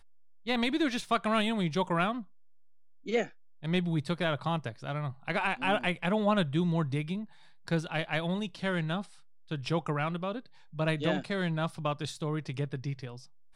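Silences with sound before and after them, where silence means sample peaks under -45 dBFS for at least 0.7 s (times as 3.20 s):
2.24–3.06 s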